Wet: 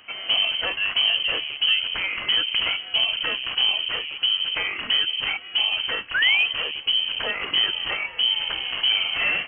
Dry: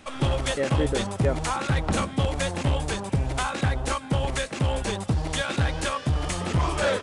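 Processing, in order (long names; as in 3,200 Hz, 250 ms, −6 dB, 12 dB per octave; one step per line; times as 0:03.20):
wrong playback speed 45 rpm record played at 33 rpm
sound drawn into the spectrogram fall, 0:06.14–0:06.46, 530–1,700 Hz −21 dBFS
voice inversion scrambler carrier 3,100 Hz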